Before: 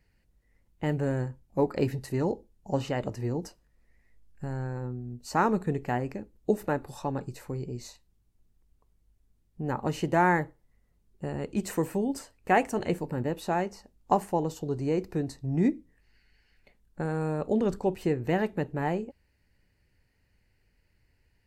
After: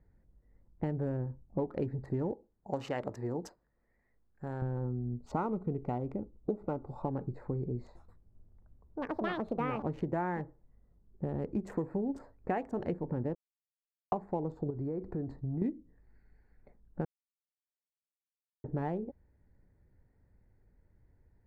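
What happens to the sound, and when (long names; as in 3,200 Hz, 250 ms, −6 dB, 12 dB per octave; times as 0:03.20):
0:01.17–0:01.59: high-frequency loss of the air 360 metres
0:02.33–0:04.62: spectral tilt +3.5 dB per octave
0:05.17–0:07.06: Butterworth band-reject 1,700 Hz, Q 3.5
0:07.82–0:11.30: delay with pitch and tempo change per echo 132 ms, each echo +6 semitones, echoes 2
0:13.35–0:14.12: silence
0:14.70–0:15.62: downward compressor 4 to 1, threshold −36 dBFS
0:17.05–0:18.64: silence
whole clip: adaptive Wiener filter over 15 samples; low-pass filter 1,000 Hz 6 dB per octave; downward compressor 6 to 1, threshold −34 dBFS; level +3.5 dB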